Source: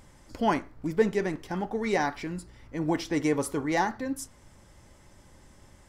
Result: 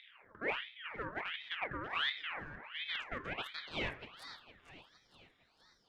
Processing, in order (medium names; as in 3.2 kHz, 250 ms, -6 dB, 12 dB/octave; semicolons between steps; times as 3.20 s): local Wiener filter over 25 samples; high-pass 80 Hz 24 dB/octave; reverse; compression 16:1, threshold -35 dBFS, peak gain reduction 19 dB; reverse; high-pass sweep 120 Hz -> 2.6 kHz, 2.44–4.51 s; valve stage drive 38 dB, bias 0.7; band-pass sweep 770 Hz -> 3.1 kHz, 2.63–4.89 s; two-band feedback delay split 780 Hz, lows 344 ms, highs 460 ms, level -12.5 dB; on a send at -12 dB: reverberation RT60 0.60 s, pre-delay 6 ms; on the sum: ring modulator with a swept carrier 1.8 kHz, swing 60%, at 1.4 Hz; trim +15 dB